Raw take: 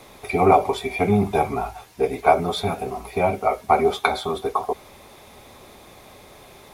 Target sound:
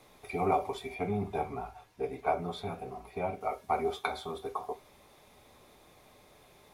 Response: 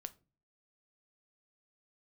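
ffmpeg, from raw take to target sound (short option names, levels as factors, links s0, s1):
-filter_complex "[0:a]asettb=1/sr,asplit=3[s0][s1][s2];[s0]atrim=end=0.944[s3];[s1]atrim=start=0.94:end=3.41,asetpts=PTS-STARTPTS,afade=t=in:d=0.004:c=qsin,afade=t=out:st=2.466:d=0.004:c=qsin,highshelf=f=4400:g=-7.5[s4];[s2]atrim=start=3.406[s5];[s3][s4]acrossfade=d=0.004:c1=hsin:c2=qsin[s6];[s6][s5]acrossfade=d=0.004:c1=qsin:c2=hsin[s7];[1:a]atrim=start_sample=2205,atrim=end_sample=3528[s8];[s7][s8]afir=irnorm=-1:irlink=0,volume=0.376"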